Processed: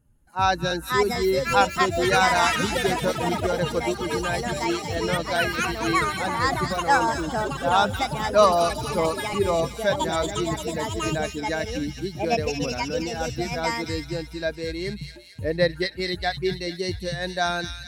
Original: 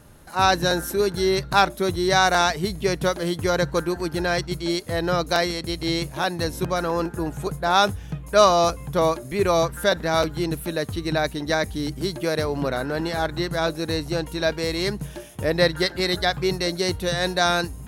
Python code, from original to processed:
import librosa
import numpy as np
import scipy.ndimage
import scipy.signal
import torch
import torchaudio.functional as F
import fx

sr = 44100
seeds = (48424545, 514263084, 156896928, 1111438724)

y = fx.bin_expand(x, sr, power=1.5)
y = fx.high_shelf(y, sr, hz=3800.0, db=-7.5)
y = fx.echo_pitch(y, sr, ms=624, semitones=5, count=3, db_per_echo=-3.0)
y = fx.echo_wet_highpass(y, sr, ms=224, feedback_pct=51, hz=2400.0, wet_db=-4.5)